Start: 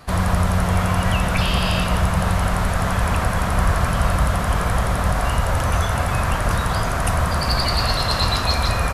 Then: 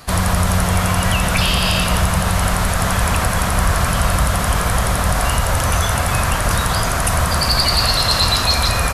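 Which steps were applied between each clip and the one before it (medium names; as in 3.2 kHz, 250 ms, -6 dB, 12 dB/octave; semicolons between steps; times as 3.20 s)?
treble shelf 3.2 kHz +9.5 dB; in parallel at +0.5 dB: peak limiter -9 dBFS, peak gain reduction 8 dB; on the sum: trim -4 dB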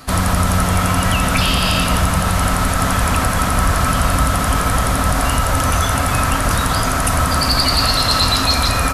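small resonant body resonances 270/1300 Hz, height 12 dB, ringing for 95 ms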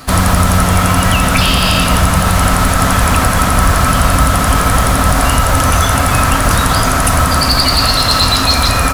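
in parallel at -0.5 dB: gain riding; on the sum: companded quantiser 6-bit; trim -1 dB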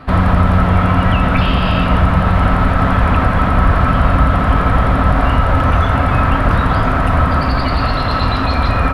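distance through air 480 m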